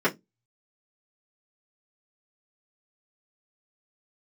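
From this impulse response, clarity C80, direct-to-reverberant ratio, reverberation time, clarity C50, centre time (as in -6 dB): 32.5 dB, -10.5 dB, 0.15 s, 22.0 dB, 11 ms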